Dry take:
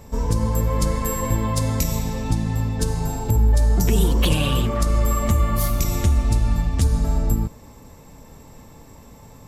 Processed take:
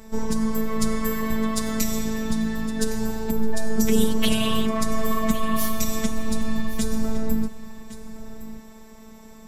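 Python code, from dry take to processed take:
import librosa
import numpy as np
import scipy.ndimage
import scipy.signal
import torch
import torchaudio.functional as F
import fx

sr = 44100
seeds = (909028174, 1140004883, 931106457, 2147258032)

p1 = x + 0.73 * np.pad(x, (int(5.1 * sr / 1000.0), 0))[:len(x)]
p2 = p1 + fx.echo_single(p1, sr, ms=1112, db=-15.5, dry=0)
y = fx.robotise(p2, sr, hz=220.0)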